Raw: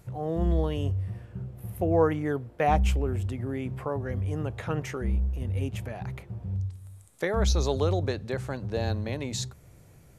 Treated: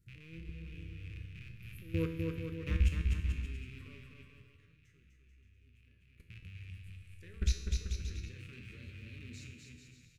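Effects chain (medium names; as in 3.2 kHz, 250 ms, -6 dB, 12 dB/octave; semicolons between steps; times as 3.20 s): rattle on loud lows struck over -35 dBFS, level -22 dBFS; level held to a coarse grid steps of 22 dB; 3.98–6.20 s: expander -32 dBFS; Butterworth band-stop 760 Hz, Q 0.67; bass shelf 120 Hz +10.5 dB; feedback comb 82 Hz, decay 0.71 s, harmonics all, mix 80%; bouncing-ball echo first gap 250 ms, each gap 0.75×, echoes 5; trim +1 dB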